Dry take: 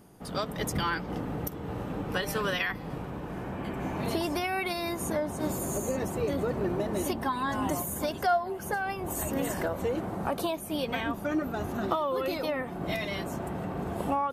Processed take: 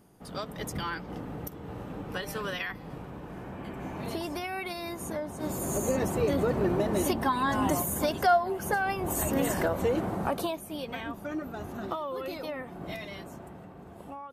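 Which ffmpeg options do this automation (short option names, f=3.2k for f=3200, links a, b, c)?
-af "volume=3dB,afade=t=in:st=5.37:d=0.53:silence=0.421697,afade=t=out:st=10.07:d=0.66:silence=0.375837,afade=t=out:st=12.79:d=0.96:silence=0.375837"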